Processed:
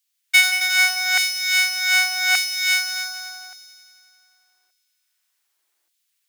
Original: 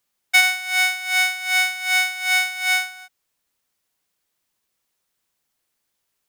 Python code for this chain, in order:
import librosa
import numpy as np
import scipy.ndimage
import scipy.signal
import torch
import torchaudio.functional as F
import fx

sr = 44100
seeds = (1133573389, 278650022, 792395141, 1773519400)

y = fx.highpass_res(x, sr, hz=320.0, q=3.9)
y = fx.echo_heads(y, sr, ms=89, heads='all three', feedback_pct=59, wet_db=-11)
y = fx.filter_lfo_highpass(y, sr, shape='saw_down', hz=0.85, low_hz=630.0, high_hz=3100.0, q=0.81)
y = y * librosa.db_to_amplitude(1.5)